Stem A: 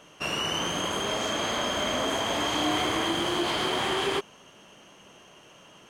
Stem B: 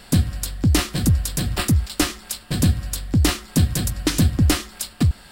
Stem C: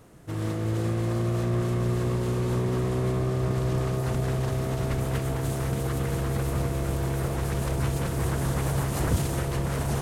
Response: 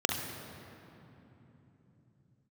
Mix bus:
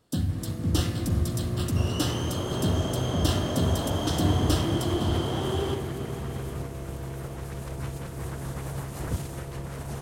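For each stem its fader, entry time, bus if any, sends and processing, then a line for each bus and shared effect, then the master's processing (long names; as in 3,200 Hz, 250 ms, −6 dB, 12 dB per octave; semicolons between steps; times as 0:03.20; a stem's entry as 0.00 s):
−8.5 dB, 1.55 s, send −5 dB, echo send −7 dB, parametric band 2,500 Hz −8.5 dB 2.6 octaves
−14.5 dB, 0.00 s, send −7.5 dB, no echo send, multiband upward and downward expander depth 70%
−4.5 dB, 0.00 s, no send, no echo send, expander for the loud parts 1.5 to 1, over −40 dBFS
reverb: on, RT60 3.4 s, pre-delay 41 ms
echo: single-tap delay 799 ms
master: no processing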